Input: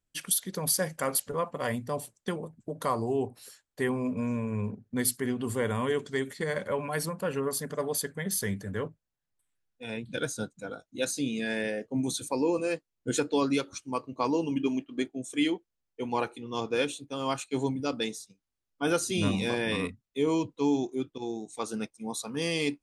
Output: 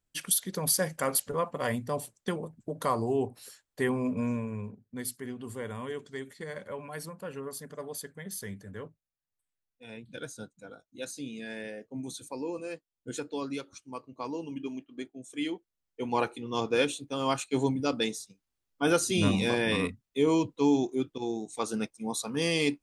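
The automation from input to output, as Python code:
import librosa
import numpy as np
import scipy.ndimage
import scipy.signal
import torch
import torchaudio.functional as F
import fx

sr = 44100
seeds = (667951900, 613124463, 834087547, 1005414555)

y = fx.gain(x, sr, db=fx.line((4.29, 0.5), (4.73, -8.5), (15.19, -8.5), (16.24, 2.0)))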